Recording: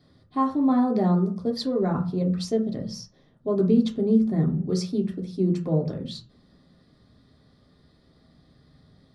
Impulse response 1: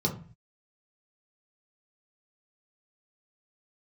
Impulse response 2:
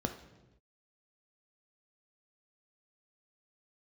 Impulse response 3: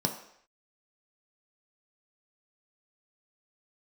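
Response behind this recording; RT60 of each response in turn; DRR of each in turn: 1; 0.40 s, 1.0 s, non-exponential decay; −1.0, 5.5, 2.5 decibels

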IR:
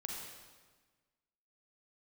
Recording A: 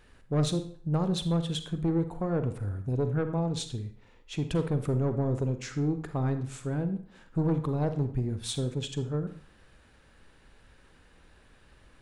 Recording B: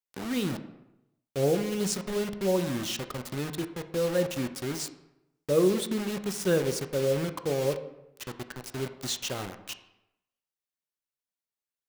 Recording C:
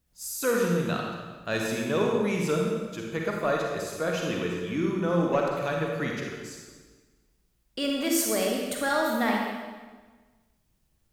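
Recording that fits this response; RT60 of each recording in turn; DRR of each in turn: C; 0.50, 0.85, 1.4 seconds; 9.0, 8.0, −1.0 decibels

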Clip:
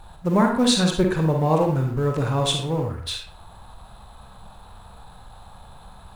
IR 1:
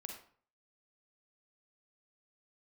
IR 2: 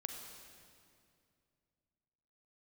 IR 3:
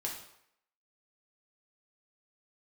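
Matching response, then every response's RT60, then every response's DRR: 1; 0.50, 2.4, 0.70 seconds; 2.0, 3.5, −2.5 decibels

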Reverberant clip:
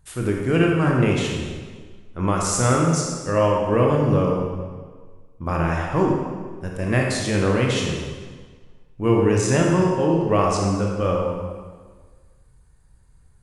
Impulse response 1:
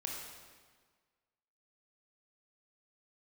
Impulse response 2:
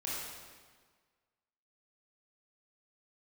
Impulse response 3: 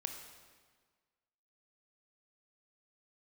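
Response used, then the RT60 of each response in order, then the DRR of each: 1; 1.6, 1.6, 1.6 seconds; −1.5, −7.5, 4.5 decibels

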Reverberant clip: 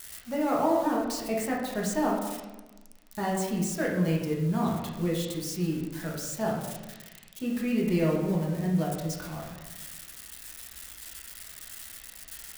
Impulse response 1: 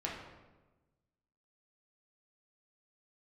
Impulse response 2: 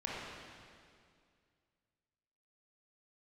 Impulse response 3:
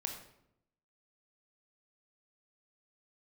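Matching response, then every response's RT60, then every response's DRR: 1; 1.2, 2.2, 0.75 seconds; −4.0, −6.0, 2.5 decibels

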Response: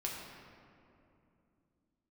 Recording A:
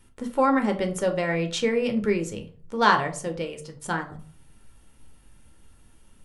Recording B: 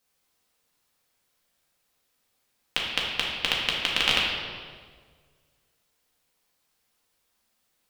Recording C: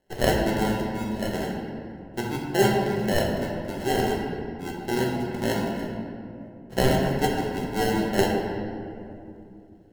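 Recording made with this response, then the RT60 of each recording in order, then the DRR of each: C; 0.45, 1.7, 2.7 seconds; 4.5, −4.0, −3.0 decibels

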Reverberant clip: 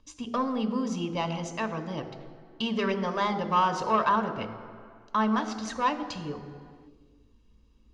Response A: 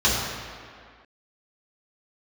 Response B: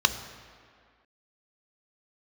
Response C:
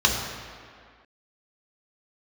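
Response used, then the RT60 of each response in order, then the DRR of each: B; 2.1, 2.1, 2.1 seconds; −8.0, 9.0, −0.5 decibels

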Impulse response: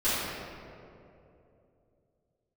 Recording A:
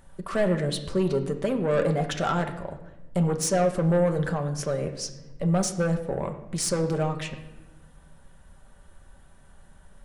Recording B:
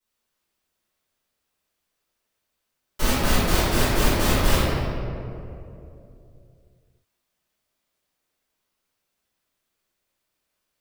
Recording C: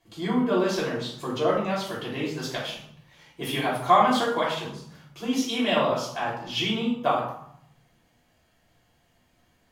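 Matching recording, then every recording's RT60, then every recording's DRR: B; 1.0, 2.9, 0.65 seconds; 4.0, −16.5, −6.5 decibels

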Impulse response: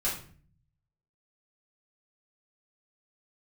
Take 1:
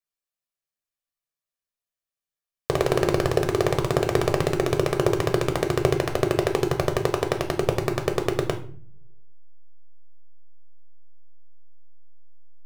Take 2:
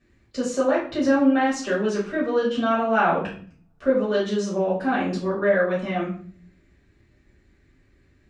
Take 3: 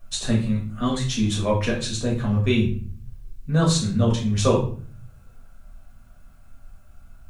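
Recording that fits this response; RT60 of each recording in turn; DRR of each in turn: 2; 0.50, 0.45, 0.45 seconds; 4.0, −8.0, −4.0 decibels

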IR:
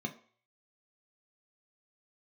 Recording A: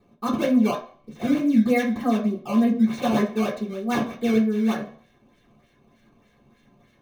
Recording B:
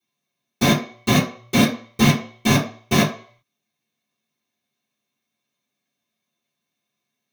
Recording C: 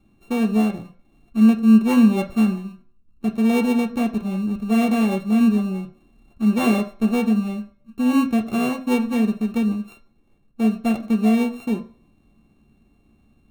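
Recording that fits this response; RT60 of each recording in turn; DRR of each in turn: C; 0.50, 0.50, 0.50 seconds; −6.0, −12.5, 3.5 decibels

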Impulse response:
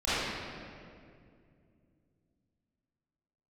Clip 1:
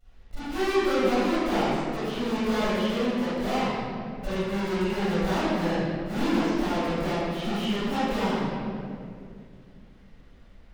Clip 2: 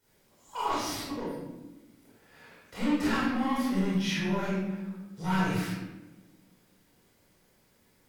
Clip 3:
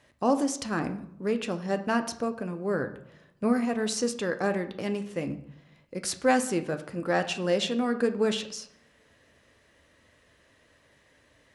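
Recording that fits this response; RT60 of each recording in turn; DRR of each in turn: 1; 2.3, 1.1, 0.75 seconds; −15.0, −9.5, 7.0 decibels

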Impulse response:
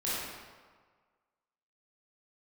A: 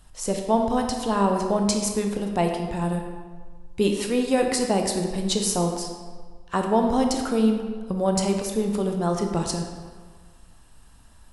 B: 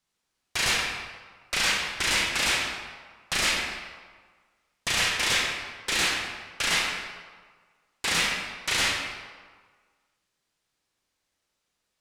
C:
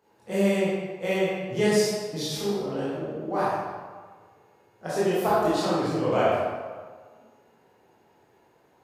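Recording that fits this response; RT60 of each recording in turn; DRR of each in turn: C; 1.6, 1.6, 1.6 seconds; 3.0, −1.5, −10.0 decibels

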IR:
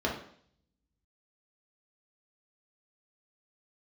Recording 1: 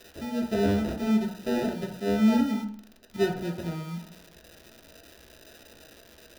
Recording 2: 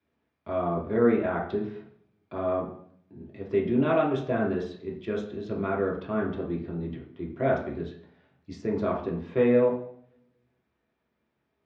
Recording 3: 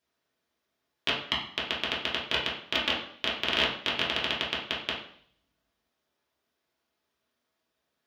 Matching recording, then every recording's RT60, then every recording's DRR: 2; 0.60, 0.60, 0.60 seconds; 1.5, −2.5, −7.0 decibels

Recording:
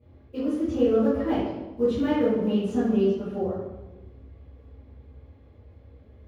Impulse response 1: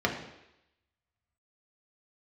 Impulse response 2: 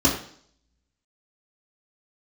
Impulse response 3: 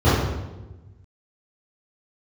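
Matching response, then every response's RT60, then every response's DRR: 3; 0.85, 0.55, 1.1 seconds; −0.5, −6.5, −15.5 decibels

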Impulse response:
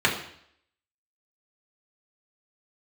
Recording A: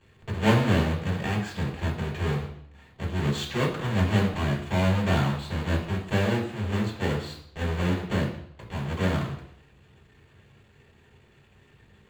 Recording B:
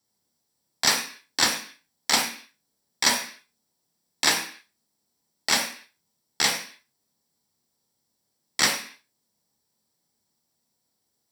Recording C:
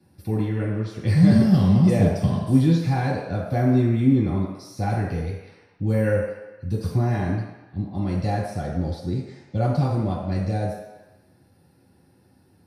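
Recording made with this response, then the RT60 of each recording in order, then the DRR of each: A; 0.65, 0.45, 1.0 seconds; −3.5, 2.5, −8.0 decibels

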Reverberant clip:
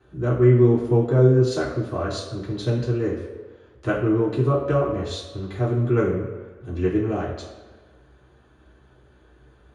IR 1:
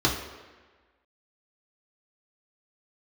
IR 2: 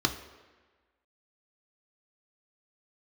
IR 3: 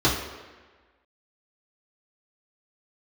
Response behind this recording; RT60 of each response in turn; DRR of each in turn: 3; 1.4, 1.4, 1.4 seconds; −3.5, 5.0, −7.5 decibels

